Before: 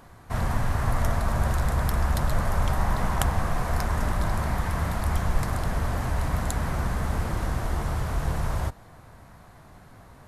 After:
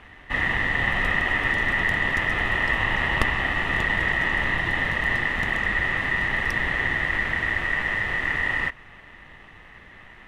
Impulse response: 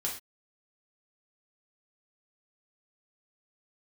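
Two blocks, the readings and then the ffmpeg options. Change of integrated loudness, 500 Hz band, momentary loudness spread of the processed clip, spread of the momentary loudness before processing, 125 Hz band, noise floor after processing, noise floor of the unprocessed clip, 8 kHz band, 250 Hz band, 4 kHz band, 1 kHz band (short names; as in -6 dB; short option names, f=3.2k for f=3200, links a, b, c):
+5.0 dB, -0.5 dB, 2 LU, 3 LU, -7.5 dB, -47 dBFS, -50 dBFS, n/a, -1.0 dB, +9.0 dB, +0.5 dB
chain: -af "aeval=exprs='val(0)*sin(2*PI*1900*n/s)':c=same,afftfilt=real='re*lt(hypot(re,im),0.501)':imag='im*lt(hypot(re,im),0.501)':win_size=1024:overlap=0.75,aemphasis=mode=reproduction:type=riaa,volume=6dB"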